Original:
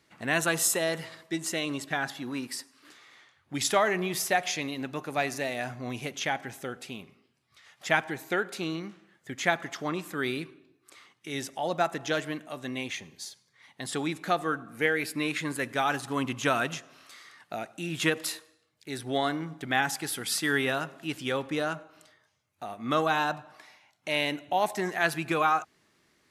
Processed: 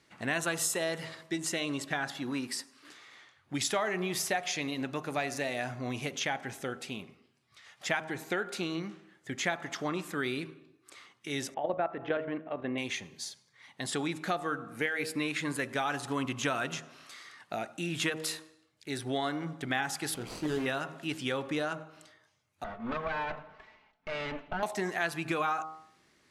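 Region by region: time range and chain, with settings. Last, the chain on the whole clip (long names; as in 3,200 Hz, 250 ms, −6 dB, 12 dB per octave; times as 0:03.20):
0:11.54–0:12.78: low-pass filter 2,700 Hz 24 dB per octave + parametric band 490 Hz +7.5 dB 2 octaves + output level in coarse steps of 11 dB
0:20.14–0:20.66: running median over 25 samples + double-tracking delay 26 ms −7 dB + upward compression, threshold −39 dBFS
0:22.64–0:24.63: lower of the sound and its delayed copy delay 4.6 ms + low-pass filter 2,300 Hz + downward compressor 2 to 1, threshold −32 dBFS
whole clip: low-pass filter 11,000 Hz 12 dB per octave; hum removal 78.77 Hz, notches 18; downward compressor 2.5 to 1, threshold −31 dBFS; level +1 dB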